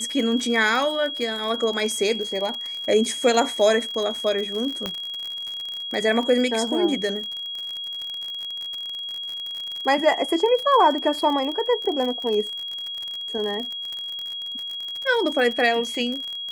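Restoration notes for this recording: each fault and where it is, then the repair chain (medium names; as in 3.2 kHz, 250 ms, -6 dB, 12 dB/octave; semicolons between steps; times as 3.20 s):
crackle 48 per s -27 dBFS
whine 3.3 kHz -29 dBFS
4.86 s: pop -12 dBFS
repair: de-click; band-stop 3.3 kHz, Q 30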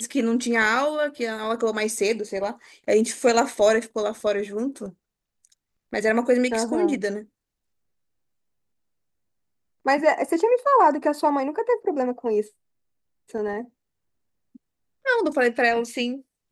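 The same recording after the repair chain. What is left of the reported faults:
4.86 s: pop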